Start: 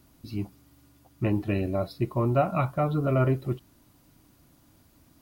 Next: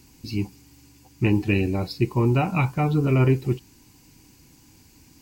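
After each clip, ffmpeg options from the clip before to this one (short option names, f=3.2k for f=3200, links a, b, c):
-af "superequalizer=8b=0.251:10b=0.447:12b=2:14b=2.24:15b=2.51,volume=5.5dB"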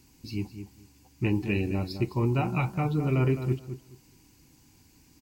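-filter_complex "[0:a]asplit=2[a][b];[b]adelay=212,lowpass=f=2k:p=1,volume=-9dB,asplit=2[c][d];[d]adelay=212,lowpass=f=2k:p=1,volume=0.2,asplit=2[e][f];[f]adelay=212,lowpass=f=2k:p=1,volume=0.2[g];[a][c][e][g]amix=inputs=4:normalize=0,volume=-6dB"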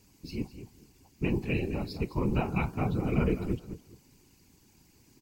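-af "afftfilt=real='hypot(re,im)*cos(2*PI*random(0))':imag='hypot(re,im)*sin(2*PI*random(1))':win_size=512:overlap=0.75,volume=3.5dB"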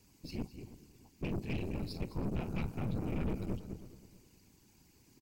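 -filter_complex "[0:a]acrossover=split=350|3000[a][b][c];[b]acompressor=threshold=-47dB:ratio=2.5[d];[a][d][c]amix=inputs=3:normalize=0,aeval=exprs='(tanh(39.8*val(0)+0.65)-tanh(0.65))/39.8':c=same,asplit=2[e][f];[f]adelay=322,lowpass=f=2k:p=1,volume=-16dB,asplit=2[g][h];[h]adelay=322,lowpass=f=2k:p=1,volume=0.32,asplit=2[i][j];[j]adelay=322,lowpass=f=2k:p=1,volume=0.32[k];[e][g][i][k]amix=inputs=4:normalize=0"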